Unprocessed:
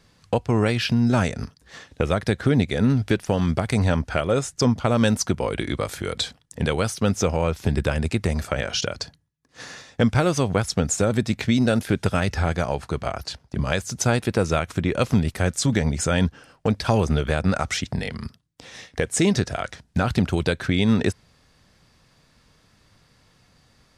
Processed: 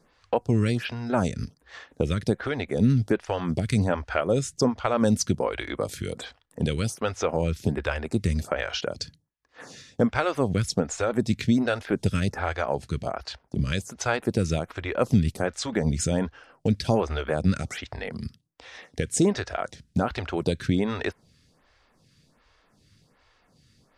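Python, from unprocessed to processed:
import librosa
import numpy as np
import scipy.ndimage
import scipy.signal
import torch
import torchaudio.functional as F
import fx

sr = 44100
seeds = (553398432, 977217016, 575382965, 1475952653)

y = fx.high_shelf(x, sr, hz=11000.0, db=-6.5)
y = fx.stagger_phaser(y, sr, hz=1.3)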